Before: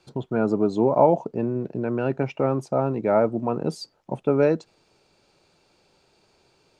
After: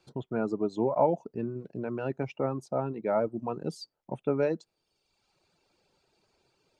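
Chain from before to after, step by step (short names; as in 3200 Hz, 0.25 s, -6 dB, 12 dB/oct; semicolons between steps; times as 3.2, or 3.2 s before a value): reverb removal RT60 1 s; gain -6.5 dB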